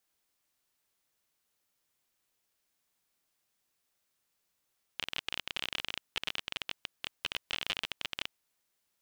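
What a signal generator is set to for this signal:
Geiger counter clicks 28 per second −16.5 dBFS 3.32 s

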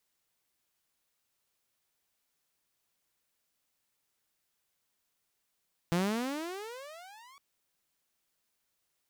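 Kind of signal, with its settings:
pitch glide with a swell saw, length 1.46 s, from 166 Hz, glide +33.5 semitones, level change −28.5 dB, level −23 dB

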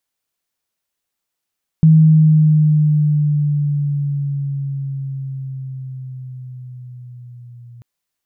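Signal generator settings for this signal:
pitch glide with a swell sine, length 5.99 s, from 159 Hz, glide −5 semitones, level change −31 dB, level −5 dB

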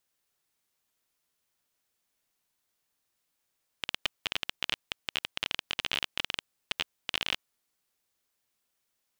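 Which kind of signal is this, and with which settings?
Geiger counter clicks 20 per second −11.5 dBFS 3.57 s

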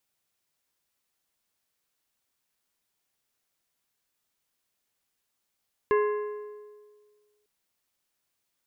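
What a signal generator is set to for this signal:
struck metal plate, lowest mode 419 Hz, decay 1.71 s, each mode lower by 6.5 dB, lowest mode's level −19 dB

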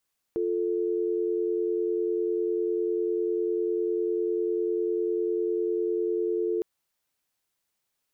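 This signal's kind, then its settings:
call progress tone dial tone, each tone −27 dBFS 6.26 s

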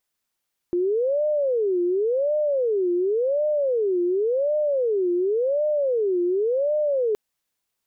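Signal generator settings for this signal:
siren wail 350–605 Hz 0.91 per second sine −19 dBFS 6.42 s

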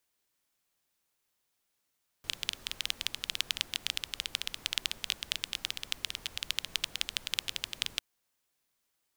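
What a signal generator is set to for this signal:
rain-like ticks over hiss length 5.75 s, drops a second 14, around 3,200 Hz, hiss −15.5 dB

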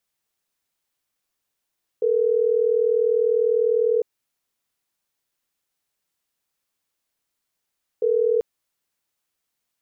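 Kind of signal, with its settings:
call progress tone ringback tone, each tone −19.5 dBFS 6.39 s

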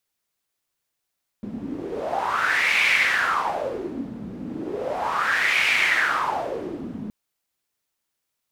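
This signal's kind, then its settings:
wind from filtered noise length 5.67 s, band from 220 Hz, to 2,300 Hz, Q 5.7, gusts 2, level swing 13 dB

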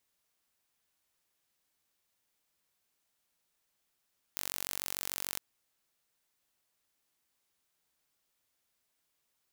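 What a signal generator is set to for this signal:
impulse train 46.8 per second, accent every 0, −9 dBFS 1.01 s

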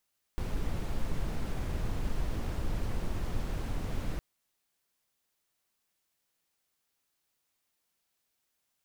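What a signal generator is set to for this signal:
noise brown, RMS −31 dBFS 3.81 s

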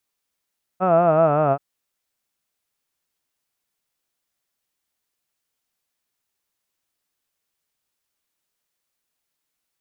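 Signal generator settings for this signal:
vowel from formants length 0.78 s, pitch 181 Hz, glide −4.5 semitones, F1 660 Hz, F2 1,300 Hz, F3 2,600 Hz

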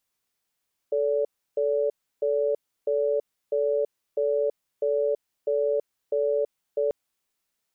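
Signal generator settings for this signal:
tone pair in a cadence 438 Hz, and 574 Hz, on 0.33 s, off 0.32 s, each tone −24 dBFS 5.99 s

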